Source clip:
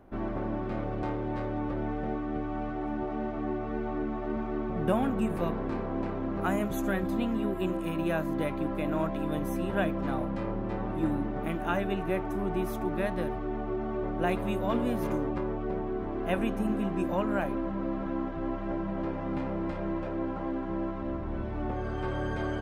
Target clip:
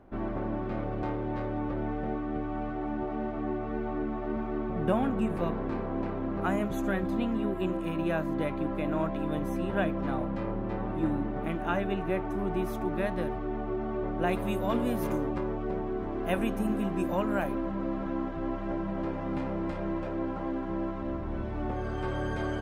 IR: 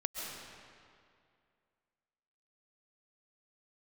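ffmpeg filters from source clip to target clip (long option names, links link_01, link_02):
-af "asetnsamples=nb_out_samples=441:pad=0,asendcmd='12.38 highshelf g -4.5;14.33 highshelf g 7',highshelf=frequency=7800:gain=-10"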